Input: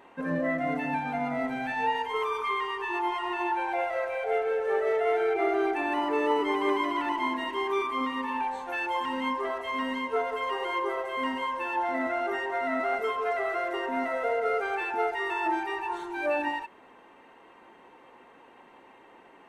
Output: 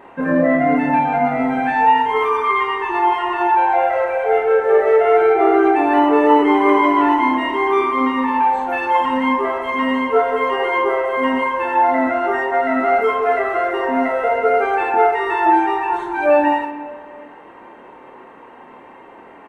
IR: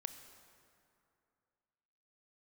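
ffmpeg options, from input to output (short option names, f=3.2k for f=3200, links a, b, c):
-filter_complex "[0:a]aecho=1:1:27|51:0.501|0.501,asplit=2[a][b];[1:a]atrim=start_sample=2205,lowpass=2.5k[c];[b][c]afir=irnorm=-1:irlink=0,volume=8dB[d];[a][d]amix=inputs=2:normalize=0,volume=2.5dB"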